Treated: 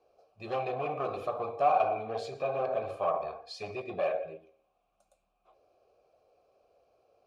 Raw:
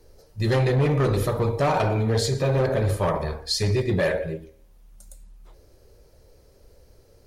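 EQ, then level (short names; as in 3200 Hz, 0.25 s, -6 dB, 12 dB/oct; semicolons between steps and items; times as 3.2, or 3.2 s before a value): vowel filter a; notch 930 Hz, Q 27; +4.0 dB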